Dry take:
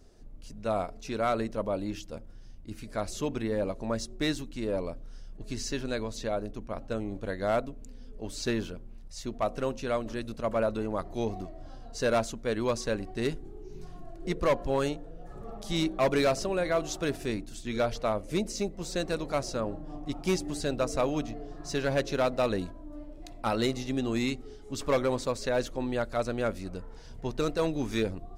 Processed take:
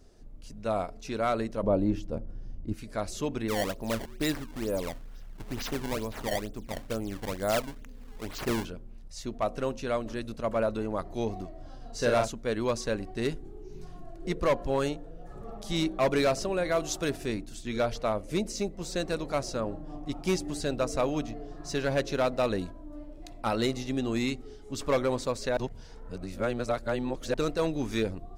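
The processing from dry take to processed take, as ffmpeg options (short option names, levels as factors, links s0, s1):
-filter_complex "[0:a]asettb=1/sr,asplit=3[s0][s1][s2];[s0]atrim=end=1.634[s3];[s1]atrim=start=1.63:end=2.74,asetpts=PTS-STARTPTS,afade=t=in:d=0.004:c=qsin,afade=t=out:st=1.106:d=0.004:c=qsin,tiltshelf=f=1300:g=8.5[s4];[s2]atrim=start=2.736[s5];[s3][s4]acrossfade=d=0.004:c1=hsin:c2=qsin[s6];[s6][s5]acrossfade=d=0.004:c1=qsin:c2=hsin,asettb=1/sr,asplit=3[s7][s8][s9];[s7]atrim=end=3.484[s10];[s8]atrim=start=3.48:end=8.65,asetpts=PTS-STARTPTS,afade=t=in:d=0.004:c=qsin,afade=t=out:st=5.166:d=0.004:c=qsin,acrusher=samples=20:mix=1:aa=0.000001:lfo=1:lforange=32:lforate=2.2[s11];[s9]atrim=start=8.646[s12];[s10][s11]acrossfade=d=0.004:c1=hsin:c2=qsin[s13];[s13][s12]acrossfade=d=0.004:c1=qsin:c2=hsin,asettb=1/sr,asplit=3[s14][s15][s16];[s14]atrim=end=11.774[s17];[s15]atrim=start=11.77:end=12.28,asetpts=PTS-STARTPTS,afade=t=in:d=0.004:c=qsin,afade=t=out:st=0.506:d=0.004:c=qsin,asplit=2[s18][s19];[s19]adelay=42,volume=0.631[s20];[s18][s20]amix=inputs=2:normalize=0,atrim=end_sample=22491[s21];[s16]atrim=start=12.276[s22];[s17][s21]acrossfade=d=0.004:c1=hsin:c2=qsin[s23];[s23][s22]acrossfade=d=0.004:c1=qsin:c2=hsin,asettb=1/sr,asplit=3[s24][s25][s26];[s24]atrim=end=16.694[s27];[s25]atrim=start=16.69:end=17.1,asetpts=PTS-STARTPTS,afade=t=in:d=0.004:c=qsin,afade=t=out:st=0.406:d=0.004:c=qsin,highshelf=f=5300:g=6[s28];[s26]atrim=start=17.096[s29];[s27][s28]acrossfade=d=0.004:c1=hsin:c2=qsin[s30];[s30][s29]acrossfade=d=0.004:c1=qsin:c2=hsin,asplit=3[s31][s32][s33];[s31]atrim=end=25.572[s34];[s32]atrim=start=25.568:end=27.342,asetpts=PTS-STARTPTS,areverse[s35];[s33]atrim=start=27.338[s36];[s34][s35]acrossfade=d=0.004:c1=hsin:c2=hsin[s37];[s37][s36]acrossfade=d=0.004:c1=hsin:c2=hsin"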